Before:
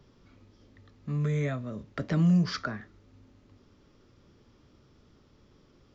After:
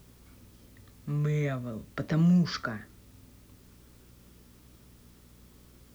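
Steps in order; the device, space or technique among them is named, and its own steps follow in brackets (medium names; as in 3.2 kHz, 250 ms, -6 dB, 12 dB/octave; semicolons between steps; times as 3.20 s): video cassette with head-switching buzz (mains buzz 60 Hz, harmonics 4, -58 dBFS -4 dB/octave; white noise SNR 31 dB)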